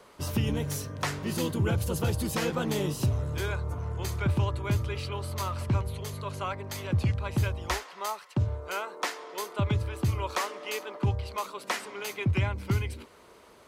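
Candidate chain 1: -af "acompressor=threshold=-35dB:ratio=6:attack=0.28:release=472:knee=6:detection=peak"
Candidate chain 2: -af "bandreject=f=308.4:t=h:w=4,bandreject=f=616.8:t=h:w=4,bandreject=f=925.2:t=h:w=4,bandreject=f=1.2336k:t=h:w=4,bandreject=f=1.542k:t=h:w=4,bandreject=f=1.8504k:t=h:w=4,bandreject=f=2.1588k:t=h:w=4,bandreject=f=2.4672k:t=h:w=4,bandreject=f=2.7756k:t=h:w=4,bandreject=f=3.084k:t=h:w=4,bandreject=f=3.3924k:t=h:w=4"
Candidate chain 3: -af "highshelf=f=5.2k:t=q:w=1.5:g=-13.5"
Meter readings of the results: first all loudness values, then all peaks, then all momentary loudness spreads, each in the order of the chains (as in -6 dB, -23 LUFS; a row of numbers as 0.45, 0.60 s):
-42.0, -31.0, -31.0 LUFS; -29.5, -17.0, -16.5 dBFS; 4, 7, 7 LU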